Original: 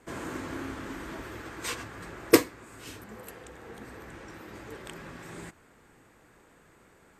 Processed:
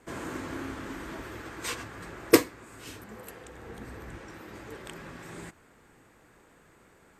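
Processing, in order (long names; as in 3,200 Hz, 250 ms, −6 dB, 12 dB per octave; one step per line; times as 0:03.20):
0:03.55–0:04.18: low-shelf EQ 130 Hz +9 dB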